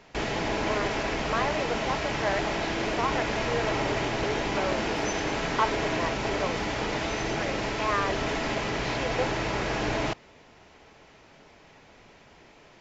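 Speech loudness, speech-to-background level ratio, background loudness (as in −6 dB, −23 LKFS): −33.5 LKFS, −4.5 dB, −29.0 LKFS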